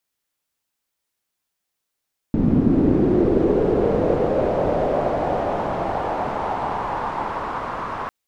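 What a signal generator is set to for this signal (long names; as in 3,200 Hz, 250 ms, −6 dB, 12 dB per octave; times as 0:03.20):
filter sweep on noise white, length 5.75 s lowpass, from 220 Hz, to 1,100 Hz, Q 3, linear, gain ramp −19 dB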